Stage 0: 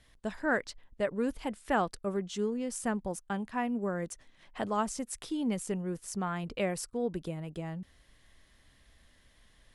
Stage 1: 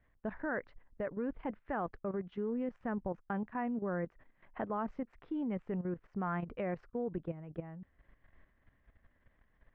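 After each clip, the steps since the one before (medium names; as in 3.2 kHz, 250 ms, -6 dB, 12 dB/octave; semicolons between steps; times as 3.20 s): low-pass 2 kHz 24 dB/octave; level held to a coarse grid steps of 12 dB; trim +1 dB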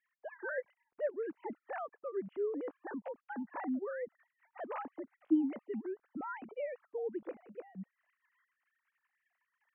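formants replaced by sine waves; trim -1 dB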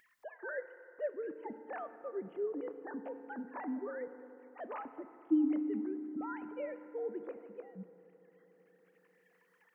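FDN reverb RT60 3.2 s, high-frequency decay 0.4×, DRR 10 dB; upward compressor, threshold -56 dBFS; trim -2 dB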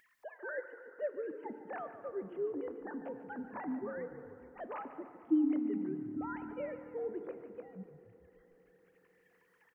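frequency-shifting echo 146 ms, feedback 58%, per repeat -39 Hz, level -13 dB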